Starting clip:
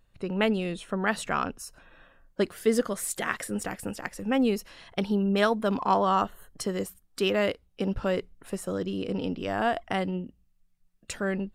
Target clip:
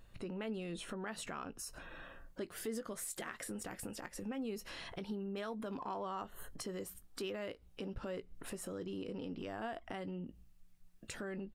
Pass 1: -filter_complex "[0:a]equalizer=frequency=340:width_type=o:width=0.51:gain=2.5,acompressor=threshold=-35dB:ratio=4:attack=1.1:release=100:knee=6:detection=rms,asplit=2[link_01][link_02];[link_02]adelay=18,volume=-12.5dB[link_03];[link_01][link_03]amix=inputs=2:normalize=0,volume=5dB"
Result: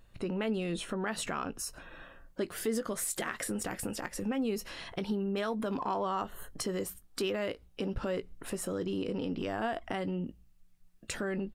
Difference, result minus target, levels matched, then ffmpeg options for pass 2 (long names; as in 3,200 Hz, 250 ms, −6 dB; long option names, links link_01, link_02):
downward compressor: peak gain reduction −8.5 dB
-filter_complex "[0:a]equalizer=frequency=340:width_type=o:width=0.51:gain=2.5,acompressor=threshold=-46.5dB:ratio=4:attack=1.1:release=100:knee=6:detection=rms,asplit=2[link_01][link_02];[link_02]adelay=18,volume=-12.5dB[link_03];[link_01][link_03]amix=inputs=2:normalize=0,volume=5dB"